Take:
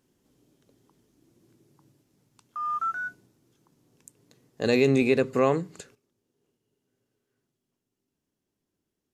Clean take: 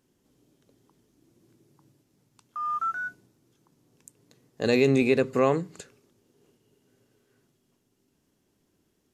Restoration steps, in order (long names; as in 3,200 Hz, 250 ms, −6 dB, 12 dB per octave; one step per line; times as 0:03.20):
level 0 dB, from 0:05.95 +11.5 dB